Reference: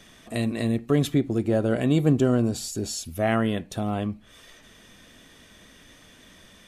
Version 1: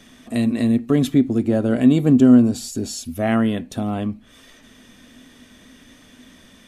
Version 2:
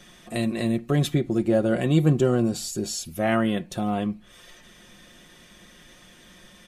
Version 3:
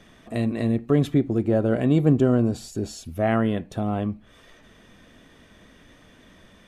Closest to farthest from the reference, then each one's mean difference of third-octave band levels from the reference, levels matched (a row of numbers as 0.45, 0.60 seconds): 2, 3, 1; 1.0, 3.0, 4.0 decibels